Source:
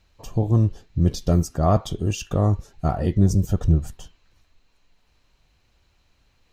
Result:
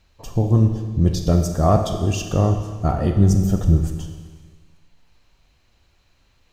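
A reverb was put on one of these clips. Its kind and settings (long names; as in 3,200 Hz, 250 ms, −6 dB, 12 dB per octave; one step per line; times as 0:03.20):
four-comb reverb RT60 1.5 s, combs from 28 ms, DRR 5.5 dB
level +2 dB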